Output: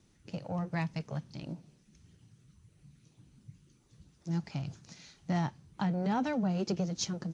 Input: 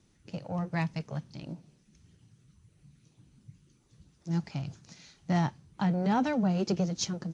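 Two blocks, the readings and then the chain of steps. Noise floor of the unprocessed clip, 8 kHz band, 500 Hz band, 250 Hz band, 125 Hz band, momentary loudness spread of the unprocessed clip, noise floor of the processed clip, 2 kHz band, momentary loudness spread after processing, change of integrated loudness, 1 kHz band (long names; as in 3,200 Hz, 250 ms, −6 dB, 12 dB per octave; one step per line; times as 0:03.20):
−67 dBFS, can't be measured, −3.0 dB, −3.5 dB, −3.0 dB, 17 LU, −67 dBFS, −3.0 dB, 15 LU, −3.5 dB, −3.5 dB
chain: downward compressor 1.5 to 1, threshold −34 dBFS, peak gain reduction 4 dB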